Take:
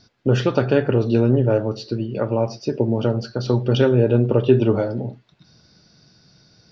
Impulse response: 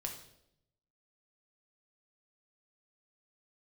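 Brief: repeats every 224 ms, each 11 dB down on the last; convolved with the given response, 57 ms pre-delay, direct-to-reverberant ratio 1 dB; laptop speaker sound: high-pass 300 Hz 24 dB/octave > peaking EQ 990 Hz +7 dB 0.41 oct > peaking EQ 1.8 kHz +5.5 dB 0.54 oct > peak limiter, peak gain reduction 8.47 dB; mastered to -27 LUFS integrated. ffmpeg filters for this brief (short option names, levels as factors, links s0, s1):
-filter_complex "[0:a]aecho=1:1:224|448|672:0.282|0.0789|0.0221,asplit=2[s0][s1];[1:a]atrim=start_sample=2205,adelay=57[s2];[s1][s2]afir=irnorm=-1:irlink=0,volume=1[s3];[s0][s3]amix=inputs=2:normalize=0,highpass=f=300:w=0.5412,highpass=f=300:w=1.3066,equalizer=f=990:t=o:w=0.41:g=7,equalizer=f=1800:t=o:w=0.54:g=5.5,volume=0.473,alimiter=limit=0.15:level=0:latency=1"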